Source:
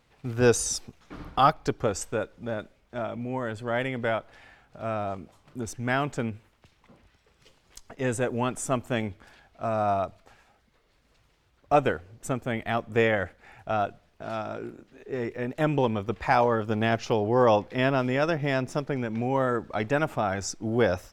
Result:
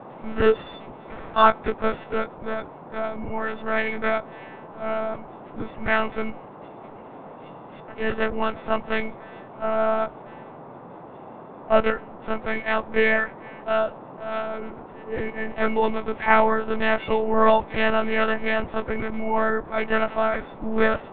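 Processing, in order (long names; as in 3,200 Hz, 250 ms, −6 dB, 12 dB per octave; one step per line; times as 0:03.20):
every partial snapped to a pitch grid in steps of 4 semitones
low-pass filter 2,300 Hz 12 dB per octave
one-pitch LPC vocoder at 8 kHz 220 Hz
noise in a band 120–990 Hz −44 dBFS
level +2.5 dB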